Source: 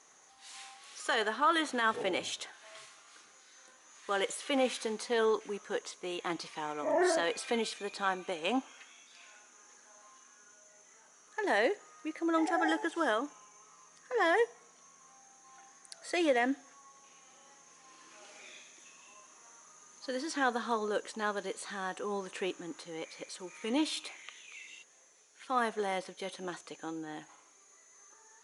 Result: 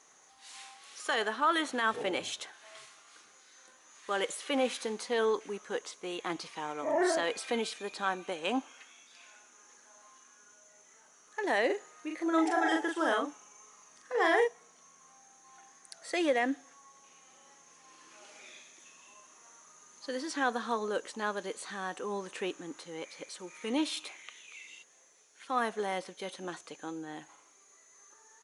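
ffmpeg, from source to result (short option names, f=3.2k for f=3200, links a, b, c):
-filter_complex "[0:a]asplit=3[a][b][c];[a]afade=t=out:st=11.69:d=0.02[d];[b]asplit=2[e][f];[f]adelay=40,volume=-3dB[g];[e][g]amix=inputs=2:normalize=0,afade=t=in:st=11.69:d=0.02,afade=t=out:st=14.47:d=0.02[h];[c]afade=t=in:st=14.47:d=0.02[i];[d][h][i]amix=inputs=3:normalize=0"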